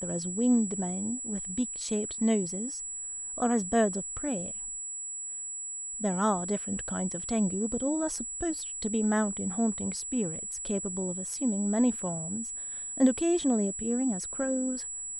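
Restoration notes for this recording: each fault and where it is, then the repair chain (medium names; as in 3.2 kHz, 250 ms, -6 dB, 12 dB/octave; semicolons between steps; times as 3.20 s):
whine 7.8 kHz -35 dBFS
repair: band-stop 7.8 kHz, Q 30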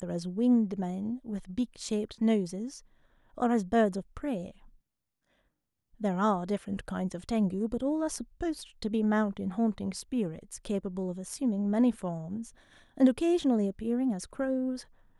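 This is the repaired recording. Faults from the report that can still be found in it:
nothing left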